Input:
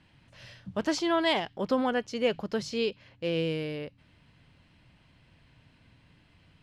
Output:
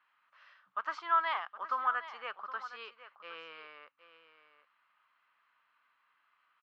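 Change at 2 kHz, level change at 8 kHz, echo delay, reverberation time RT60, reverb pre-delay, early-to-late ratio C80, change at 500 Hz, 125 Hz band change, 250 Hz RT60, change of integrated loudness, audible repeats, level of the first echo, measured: -3.0 dB, under -20 dB, 0.766 s, none, none, none, -20.0 dB, under -40 dB, none, -5.0 dB, 1, -13.5 dB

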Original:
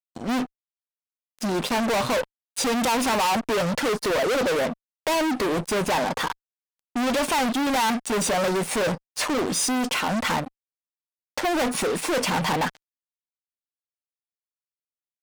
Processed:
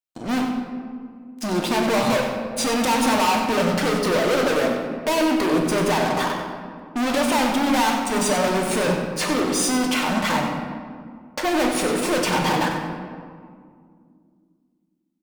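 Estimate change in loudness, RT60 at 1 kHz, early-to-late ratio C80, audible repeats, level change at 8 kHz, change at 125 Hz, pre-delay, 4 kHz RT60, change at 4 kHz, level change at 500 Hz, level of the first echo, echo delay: +3.0 dB, 1.9 s, 4.0 dB, 1, +1.5 dB, +4.0 dB, 3 ms, 1.1 s, +2.0 dB, +3.0 dB, -9.5 dB, 94 ms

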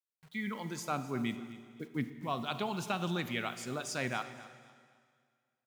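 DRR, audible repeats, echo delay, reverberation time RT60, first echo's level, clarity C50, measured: 10.5 dB, 2, 0.256 s, 1.9 s, -17.0 dB, 11.0 dB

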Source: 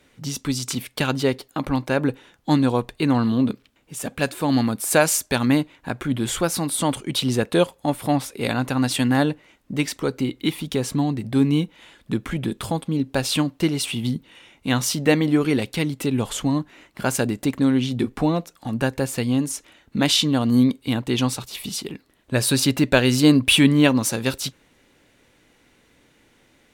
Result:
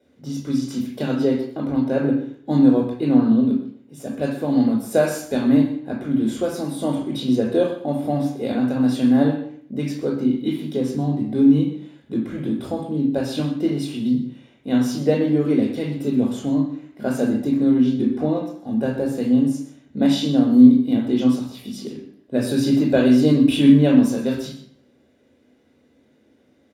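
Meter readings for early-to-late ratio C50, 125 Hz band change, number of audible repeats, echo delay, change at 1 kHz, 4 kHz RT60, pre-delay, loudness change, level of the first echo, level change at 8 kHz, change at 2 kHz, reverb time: 5.5 dB, -1.5 dB, 1, 0.127 s, -5.0 dB, 0.55 s, 16 ms, +2.0 dB, -14.5 dB, under -10 dB, -9.0 dB, 0.60 s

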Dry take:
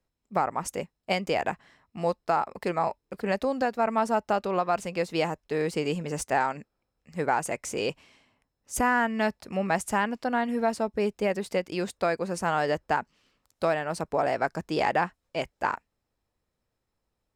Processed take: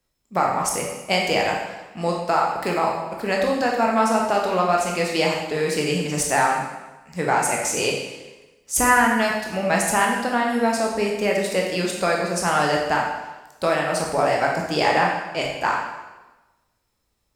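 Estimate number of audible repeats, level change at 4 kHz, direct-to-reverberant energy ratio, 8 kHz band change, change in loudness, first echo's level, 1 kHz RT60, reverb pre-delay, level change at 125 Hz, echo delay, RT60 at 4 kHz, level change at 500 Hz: none, +11.0 dB, -1.5 dB, +13.0 dB, +7.0 dB, none, 1.1 s, 7 ms, +6.0 dB, none, 1.0 s, +5.5 dB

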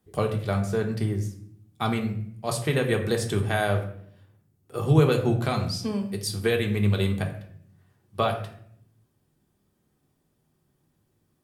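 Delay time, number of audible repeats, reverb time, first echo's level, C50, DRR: none, none, 0.65 s, none, 9.5 dB, 2.0 dB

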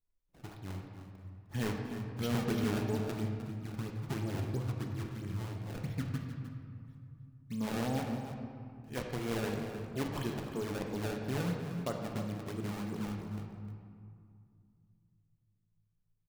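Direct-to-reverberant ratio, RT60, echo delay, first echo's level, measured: 1.0 dB, 2.3 s, 0.306 s, -12.0 dB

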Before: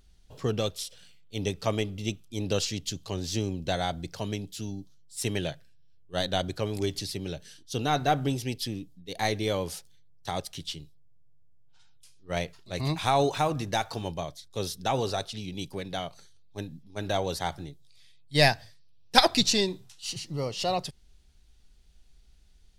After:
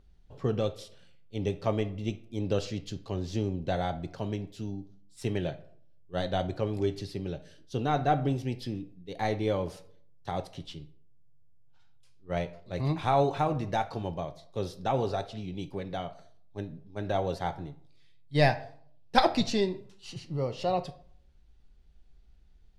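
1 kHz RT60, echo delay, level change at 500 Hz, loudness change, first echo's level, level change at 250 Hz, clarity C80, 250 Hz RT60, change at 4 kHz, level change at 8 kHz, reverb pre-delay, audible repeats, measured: 0.55 s, none, 0.0 dB, -2.0 dB, none, 0.0 dB, 19.5 dB, 0.70 s, -10.0 dB, -14.5 dB, 3 ms, none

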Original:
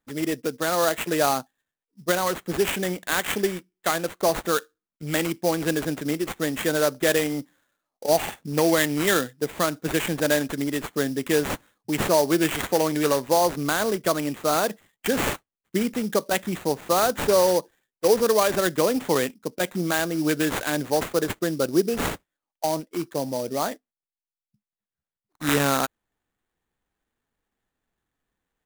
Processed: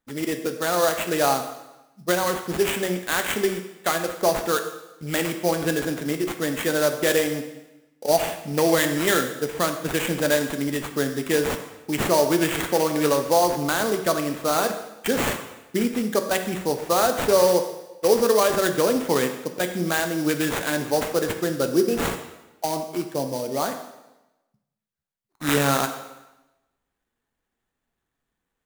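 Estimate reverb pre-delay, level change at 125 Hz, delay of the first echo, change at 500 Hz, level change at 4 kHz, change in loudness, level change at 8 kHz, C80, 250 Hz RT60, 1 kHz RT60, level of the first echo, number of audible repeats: 4 ms, +0.5 dB, none, +1.5 dB, +1.0 dB, +1.0 dB, +1.0 dB, 10.5 dB, 1.0 s, 1.0 s, none, none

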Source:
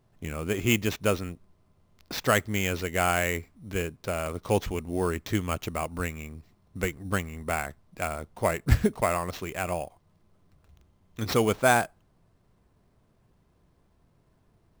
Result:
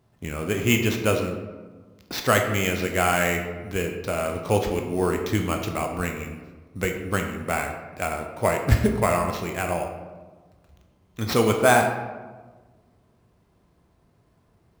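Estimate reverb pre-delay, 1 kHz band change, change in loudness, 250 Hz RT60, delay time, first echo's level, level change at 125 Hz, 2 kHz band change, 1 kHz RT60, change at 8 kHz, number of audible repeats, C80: 14 ms, +4.5 dB, +4.0 dB, 1.6 s, none, none, +4.0 dB, +4.0 dB, 1.3 s, +3.5 dB, none, 7.5 dB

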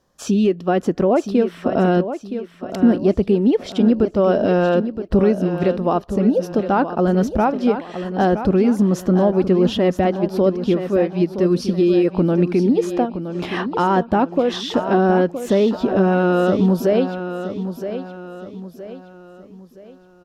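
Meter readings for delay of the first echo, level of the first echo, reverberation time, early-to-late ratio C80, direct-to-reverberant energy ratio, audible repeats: 0.969 s, -10.0 dB, none, none, none, 4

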